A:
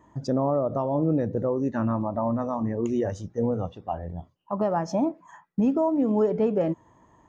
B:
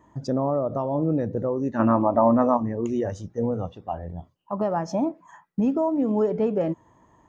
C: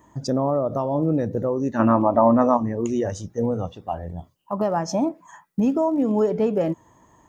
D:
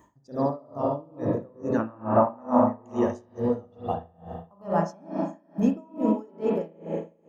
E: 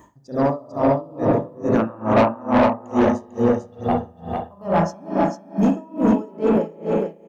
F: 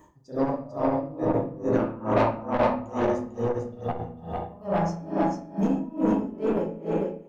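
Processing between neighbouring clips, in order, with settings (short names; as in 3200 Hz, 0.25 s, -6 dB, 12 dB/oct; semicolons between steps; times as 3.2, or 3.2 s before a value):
spectral gain 1.79–2.57, 220–3400 Hz +9 dB
high shelf 4800 Hz +12 dB; gain +2 dB
reverb RT60 2.3 s, pre-delay 36 ms, DRR -1.5 dB; dB-linear tremolo 2.3 Hz, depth 31 dB; gain -2 dB
soft clip -19.5 dBFS, distortion -11 dB; echo 0.447 s -4.5 dB; gain +8.5 dB
shoebox room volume 37 m³, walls mixed, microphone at 0.43 m; core saturation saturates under 260 Hz; gain -7 dB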